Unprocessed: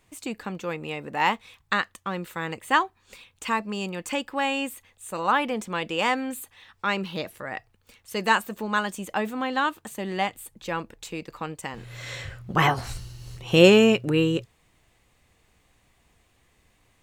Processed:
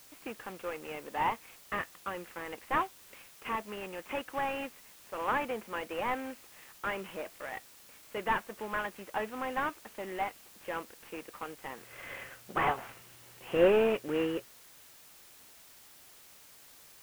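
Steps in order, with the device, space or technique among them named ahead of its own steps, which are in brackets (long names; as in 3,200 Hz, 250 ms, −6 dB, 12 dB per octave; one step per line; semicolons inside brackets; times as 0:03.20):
army field radio (band-pass filter 350–3,100 Hz; variable-slope delta modulation 16 kbit/s; white noise bed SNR 20 dB)
level −4.5 dB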